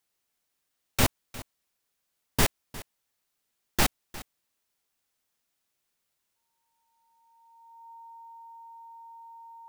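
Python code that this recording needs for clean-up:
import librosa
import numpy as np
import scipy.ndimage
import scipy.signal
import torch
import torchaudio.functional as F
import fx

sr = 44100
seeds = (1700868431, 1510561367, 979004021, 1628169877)

y = fx.notch(x, sr, hz=920.0, q=30.0)
y = fx.fix_echo_inverse(y, sr, delay_ms=355, level_db=-18.0)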